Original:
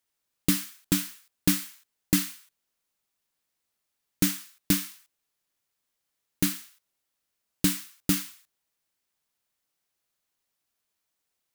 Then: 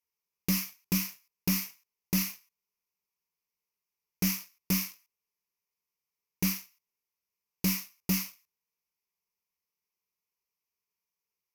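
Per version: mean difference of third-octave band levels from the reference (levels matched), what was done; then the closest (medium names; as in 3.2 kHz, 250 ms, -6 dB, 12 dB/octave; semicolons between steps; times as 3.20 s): 4.5 dB: rippled EQ curve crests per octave 0.81, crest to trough 14 dB; waveshaping leveller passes 2; peak limiter -12 dBFS, peak gain reduction 6.5 dB; trim -7.5 dB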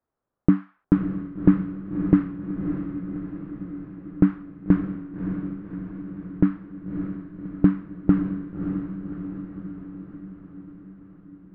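18.5 dB: low-pass 1.2 kHz 24 dB/octave; peaking EQ 920 Hz -4.5 dB 0.3 oct; on a send: echo that smears into a reverb 593 ms, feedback 62%, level -7 dB; on the sum: trim +8.5 dB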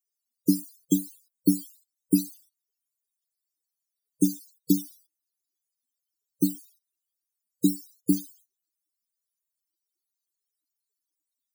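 11.5 dB: high-pass 210 Hz 24 dB/octave; peaking EQ 1.2 kHz -10 dB 1.6 oct; loudest bins only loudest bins 32; trim +7 dB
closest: first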